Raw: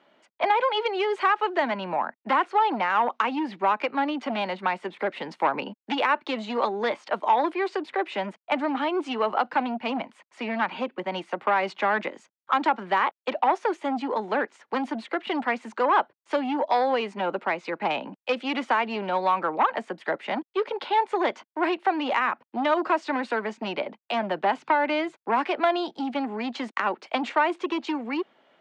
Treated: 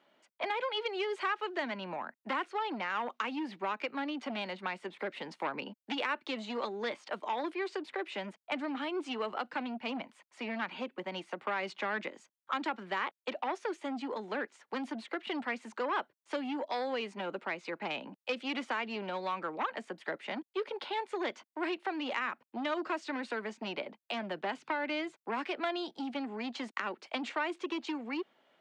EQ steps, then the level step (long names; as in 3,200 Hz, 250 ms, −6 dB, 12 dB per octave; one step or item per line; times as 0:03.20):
high-shelf EQ 4,500 Hz +7 dB
dynamic equaliser 840 Hz, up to −7 dB, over −34 dBFS, Q 1.3
−8.0 dB